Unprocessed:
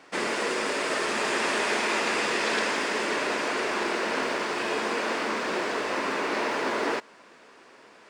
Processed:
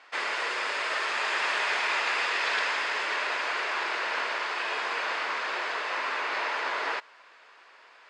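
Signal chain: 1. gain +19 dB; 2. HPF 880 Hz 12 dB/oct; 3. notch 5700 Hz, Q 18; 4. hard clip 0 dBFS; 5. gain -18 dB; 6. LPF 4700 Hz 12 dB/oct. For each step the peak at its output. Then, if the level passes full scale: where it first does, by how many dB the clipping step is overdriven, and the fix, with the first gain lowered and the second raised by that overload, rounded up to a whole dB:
+5.0, +3.5, +3.5, 0.0, -18.0, -17.5 dBFS; step 1, 3.5 dB; step 1 +15 dB, step 5 -14 dB

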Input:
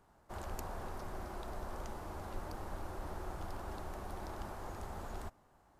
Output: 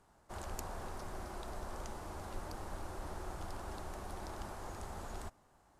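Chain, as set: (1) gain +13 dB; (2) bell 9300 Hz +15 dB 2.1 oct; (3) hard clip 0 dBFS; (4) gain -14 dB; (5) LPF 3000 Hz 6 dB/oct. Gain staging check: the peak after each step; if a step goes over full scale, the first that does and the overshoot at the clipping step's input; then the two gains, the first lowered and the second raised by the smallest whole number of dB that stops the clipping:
-13.0, -2.5, -2.5, -16.5, -24.5 dBFS; no overload

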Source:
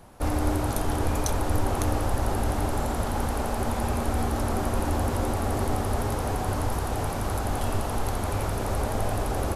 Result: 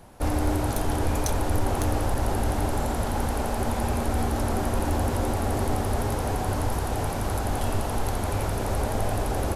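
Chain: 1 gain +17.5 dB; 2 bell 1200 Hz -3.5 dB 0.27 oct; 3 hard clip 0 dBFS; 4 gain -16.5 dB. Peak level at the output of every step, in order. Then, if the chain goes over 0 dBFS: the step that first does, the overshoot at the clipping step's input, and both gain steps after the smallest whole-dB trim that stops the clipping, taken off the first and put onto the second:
+8.0, +8.0, 0.0, -16.5 dBFS; step 1, 8.0 dB; step 1 +9.5 dB, step 4 -8.5 dB

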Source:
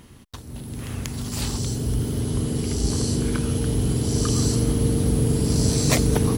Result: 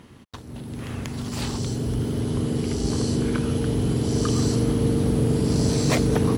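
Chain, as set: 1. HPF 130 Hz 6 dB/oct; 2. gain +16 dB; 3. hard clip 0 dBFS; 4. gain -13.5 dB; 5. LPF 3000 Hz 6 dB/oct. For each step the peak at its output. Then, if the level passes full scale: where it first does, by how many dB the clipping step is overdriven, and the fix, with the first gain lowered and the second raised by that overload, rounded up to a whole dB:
-7.0, +9.0, 0.0, -13.5, -13.5 dBFS; step 2, 9.0 dB; step 2 +7 dB, step 4 -4.5 dB

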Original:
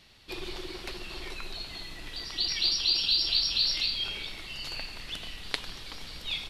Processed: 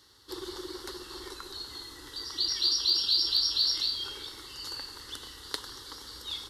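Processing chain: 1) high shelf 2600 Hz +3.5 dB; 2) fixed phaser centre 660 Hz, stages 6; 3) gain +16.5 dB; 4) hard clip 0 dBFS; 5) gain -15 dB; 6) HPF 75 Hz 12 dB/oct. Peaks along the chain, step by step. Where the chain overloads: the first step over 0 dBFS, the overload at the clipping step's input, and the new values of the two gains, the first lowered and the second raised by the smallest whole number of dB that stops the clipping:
-4.5, -10.5, +6.0, 0.0, -15.0, -14.5 dBFS; step 3, 6.0 dB; step 3 +10.5 dB, step 5 -9 dB

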